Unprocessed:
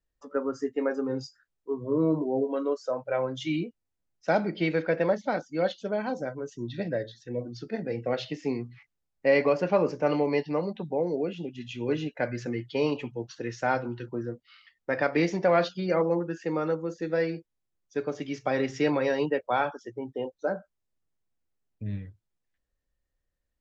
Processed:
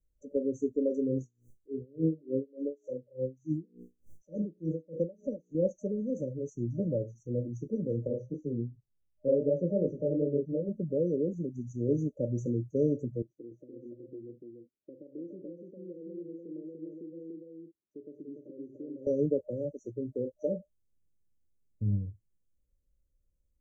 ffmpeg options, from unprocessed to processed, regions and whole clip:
ffmpeg -i in.wav -filter_complex "[0:a]asettb=1/sr,asplit=3[link_01][link_02][link_03];[link_01]atrim=end=1.184[link_04];[link_02]atrim=start=1.18:end=5.55,asetpts=PTS-STARTPTS,afade=type=in:duration=0.004:curve=qsin,afade=type=out:start_time=4.366:duration=0.004:curve=qsin,bandreject=frequency=60:width_type=h:width=6,bandreject=frequency=120:width_type=h:width=6,bandreject=frequency=180:width_type=h:width=6,bandreject=frequency=240:width_type=h:width=6,bandreject=frequency=300:width_type=h:width=6,bandreject=frequency=360:width_type=h:width=6,bandreject=frequency=420:width_type=h:width=6,bandreject=frequency=480:width_type=h:width=6,acompressor=mode=upward:threshold=-31dB:ratio=2.5:attack=3.2:release=140:knee=2.83:detection=peak,aeval=exprs='val(0)*pow(10,-29*(0.5-0.5*cos(2*PI*3.4*n/s))/20)':channel_layout=same[link_05];[link_03]atrim=start=5.546[link_06];[link_04][link_05]acrossfade=duration=0.004:curve1=hsin:curve2=qsin[link_07];[link_07][link_06]acrossfade=duration=0.004:curve1=qsin:curve2=hsin,asettb=1/sr,asplit=3[link_08][link_09][link_10];[link_08]atrim=end=8.074[link_11];[link_09]atrim=start=8.07:end=10.69,asetpts=PTS-STARTPTS,afade=type=in:duration=0.004:curve=qsin,afade=type=out:start_time=2.616:duration=0.004:curve=qsin,lowpass=frequency=4200:width=0.5412,lowpass=frequency=4200:width=1.3066,flanger=delay=19:depth=6.8:speed=2.7[link_12];[link_10]atrim=start=10.686[link_13];[link_11][link_12]acrossfade=duration=0.004:curve1=hsin:curve2=qsin[link_14];[link_14][link_13]acrossfade=duration=0.004:curve1=qsin:curve2=hsin,asettb=1/sr,asplit=3[link_15][link_16][link_17];[link_15]atrim=end=13.224[link_18];[link_16]atrim=start=13.22:end=19.07,asetpts=PTS-STARTPTS,afade=type=in:duration=0.004:curve=qsin,afade=type=out:start_time=5.846:duration=0.004:curve=qsin,acompressor=threshold=-39dB:ratio=3:attack=3.2:release=140:knee=1:detection=peak,bandpass=frequency=330:width_type=q:width=3,aecho=1:1:291:0.668,atrim=end_sample=257985[link_19];[link_17]atrim=start=19.066[link_20];[link_18][link_19]acrossfade=duration=0.004:curve1=hsin:curve2=qsin[link_21];[link_21][link_20]acrossfade=duration=0.004:curve1=qsin:curve2=hsin,afftfilt=real='re*(1-between(b*sr/4096,610,5800))':imag='im*(1-between(b*sr/4096,610,5800))':win_size=4096:overlap=0.75,lowshelf=frequency=190:gain=10.5,volume=-3dB" out.wav

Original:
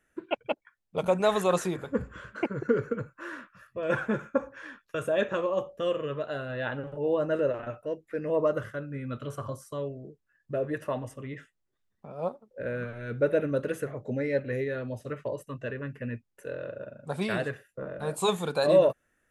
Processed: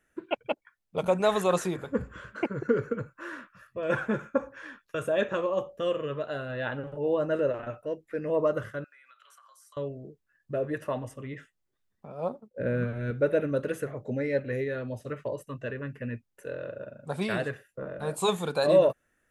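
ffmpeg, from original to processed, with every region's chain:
ffmpeg -i in.wav -filter_complex "[0:a]asettb=1/sr,asplit=3[link_01][link_02][link_03];[link_01]atrim=end=8.844[link_04];[link_02]atrim=start=8.84:end=9.77,asetpts=PTS-STARTPTS,afade=type=in:duration=0.004:curve=qsin,afade=type=out:start_time=0.926:duration=0.004:curve=qsin,highpass=frequency=1100:width=0.5412,highpass=frequency=1100:width=1.3066,acompressor=threshold=-53dB:ratio=12:attack=3.2:release=140:knee=1:detection=peak[link_05];[link_03]atrim=start=9.766[link_06];[link_04][link_05]acrossfade=duration=0.004:curve1=hsin:curve2=qsin[link_07];[link_07][link_06]acrossfade=duration=0.004:curve1=qsin:curve2=hsin,asettb=1/sr,asplit=3[link_08][link_09][link_10];[link_08]atrim=end=12.294[link_11];[link_09]atrim=start=12.29:end=13.11,asetpts=PTS-STARTPTS,afade=type=in:duration=0.004:curve=qsin,afade=type=out:start_time=0.816:duration=0.004:curve=qsin,agate=range=-33dB:threshold=-57dB:ratio=3:release=100:detection=peak,equalizer=frequency=170:width=0.5:gain=9[link_12];[link_10]atrim=start=13.106[link_13];[link_11][link_12]acrossfade=duration=0.004:curve1=hsin:curve2=qsin[link_14];[link_14][link_13]acrossfade=duration=0.004:curve1=qsin:curve2=hsin" out.wav

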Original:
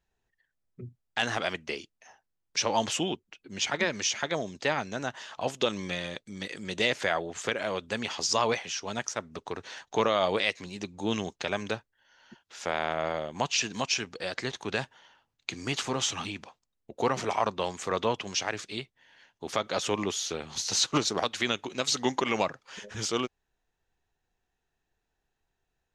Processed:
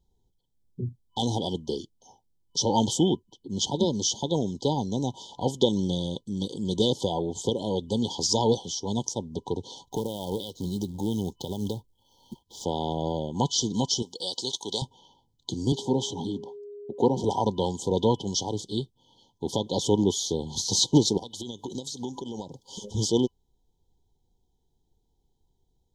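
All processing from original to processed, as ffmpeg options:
ffmpeg -i in.wav -filter_complex "[0:a]asettb=1/sr,asplit=3[link_01][link_02][link_03];[link_01]atrim=end=9.854[link_04];[link_02]atrim=start=9.85:end=12.64,asetpts=PTS-STARTPTS,afade=type=in:duration=0.004:curve=qsin,afade=type=out:start_time=2.786:duration=0.004:curve=qsin,lowshelf=frequency=110:gain=5.5,acompressor=threshold=-34dB:ratio=3:attack=3.2:release=140:knee=1:detection=peak,acrusher=bits=3:mode=log:mix=0:aa=0.000001[link_05];[link_03]atrim=start=12.636[link_06];[link_04][link_05]acrossfade=duration=0.004:curve1=hsin:curve2=qsin[link_07];[link_07][link_06]acrossfade=duration=0.004:curve1=qsin:curve2=hsin,asettb=1/sr,asplit=3[link_08][link_09][link_10];[link_08]atrim=end=14.024[link_11];[link_09]atrim=start=14.02:end=14.82,asetpts=PTS-STARTPTS,afade=type=in:duration=0.004:curve=qsin,afade=type=out:start_time=0.796:duration=0.004:curve=qsin,highpass=frequency=890:poles=1,highshelf=frequency=2500:gain=9.5[link_12];[link_10]atrim=start=14.816[link_13];[link_11][link_12]acrossfade=duration=0.004:curve1=hsin:curve2=qsin[link_14];[link_14][link_13]acrossfade=duration=0.004:curve1=qsin:curve2=hsin,asettb=1/sr,asplit=3[link_15][link_16][link_17];[link_15]atrim=end=15.724[link_18];[link_16]atrim=start=15.72:end=17.24,asetpts=PTS-STARTPTS,afade=type=in:duration=0.004:curve=qsin,afade=type=out:start_time=1.516:duration=0.004:curve=qsin,highpass=150,highshelf=frequency=3100:gain=-10,aeval=exprs='val(0)+0.00501*sin(2*PI*410*n/s)':channel_layout=same[link_19];[link_17]atrim=start=17.236[link_20];[link_18][link_19]acrossfade=duration=0.004:curve1=hsin:curve2=qsin[link_21];[link_21][link_20]acrossfade=duration=0.004:curve1=qsin:curve2=hsin,asettb=1/sr,asplit=3[link_22][link_23][link_24];[link_22]atrim=end=21.174[link_25];[link_23]atrim=start=21.17:end=22.92,asetpts=PTS-STARTPTS,afade=type=in:duration=0.004:curve=qsin,afade=type=out:start_time=1.746:duration=0.004:curve=qsin,highshelf=frequency=5700:gain=9,acompressor=threshold=-36dB:ratio=8:attack=3.2:release=140:knee=1:detection=peak[link_26];[link_24]atrim=start=22.916[link_27];[link_25][link_26]acrossfade=duration=0.004:curve1=hsin:curve2=qsin[link_28];[link_28][link_27]acrossfade=duration=0.004:curve1=qsin:curve2=hsin,equalizer=frequency=640:width_type=o:width=0.3:gain=-13.5,afftfilt=real='re*(1-between(b*sr/4096,1000,3000))':imag='im*(1-between(b*sr/4096,1000,3000))':win_size=4096:overlap=0.75,lowshelf=frequency=490:gain=9.5,volume=2.5dB" out.wav

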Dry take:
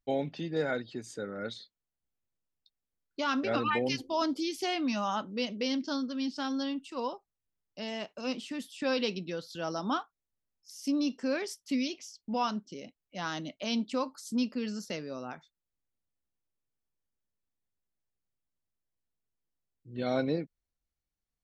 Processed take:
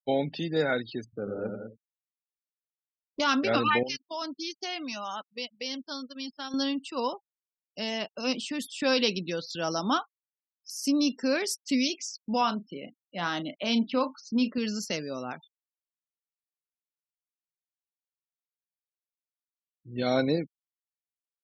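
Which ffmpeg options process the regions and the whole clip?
ffmpeg -i in.wav -filter_complex "[0:a]asettb=1/sr,asplit=3[link_01][link_02][link_03];[link_01]atrim=end=1.044[link_04];[link_02]atrim=start=1.04:end=3.2,asetpts=PTS-STARTPTS,afade=type=in:duration=0.004:curve=qsin,afade=type=out:start_time=2.156:duration=0.004:curve=qsin,lowpass=1500,adynamicsmooth=sensitivity=1.5:basefreq=570,aecho=1:1:88|98|163|198|261:0.531|0.158|0.335|0.355|0.1,atrim=end_sample=95256[link_05];[link_03]atrim=start=3.196[link_06];[link_04][link_05]acrossfade=duration=0.004:curve1=hsin:curve2=qsin[link_07];[link_07][link_06]acrossfade=duration=0.004:curve1=qsin:curve2=hsin,asettb=1/sr,asplit=3[link_08][link_09][link_10];[link_08]atrim=end=3.834[link_11];[link_09]atrim=start=3.83:end=6.54,asetpts=PTS-STARTPTS,afade=type=in:duration=0.004:curve=qsin,afade=type=out:start_time=2.706:duration=0.004:curve=qsin,equalizer=frequency=140:width_type=o:width=2.5:gain=-9.5,acompressor=threshold=-42dB:ratio=2:attack=3.2:release=140:knee=1:detection=peak,agate=range=-20dB:threshold=-44dB:ratio=16:release=100:detection=peak[link_12];[link_10]atrim=start=6.536[link_13];[link_11][link_12]acrossfade=duration=0.004:curve1=hsin:curve2=qsin[link_14];[link_14][link_13]acrossfade=duration=0.004:curve1=qsin:curve2=hsin,asettb=1/sr,asplit=3[link_15][link_16][link_17];[link_15]atrim=end=12.414[link_18];[link_16]atrim=start=12.41:end=14.58,asetpts=PTS-STARTPTS,afade=type=in:duration=0.004:curve=qsin,afade=type=out:start_time=2.166:duration=0.004:curve=qsin,highpass=110,lowpass=3600,asplit=2[link_19][link_20];[link_20]adelay=35,volume=-11dB[link_21];[link_19][link_21]amix=inputs=2:normalize=0,atrim=end_sample=95697[link_22];[link_17]atrim=start=14.576[link_23];[link_18][link_22]acrossfade=duration=0.004:curve1=hsin:curve2=qsin[link_24];[link_24][link_23]acrossfade=duration=0.004:curve1=qsin:curve2=hsin,highshelf=frequency=8400:gain=2,afftfilt=real='re*gte(hypot(re,im),0.00316)':imag='im*gte(hypot(re,im),0.00316)':win_size=1024:overlap=0.75,highshelf=frequency=3400:gain=7.5,volume=4dB" out.wav

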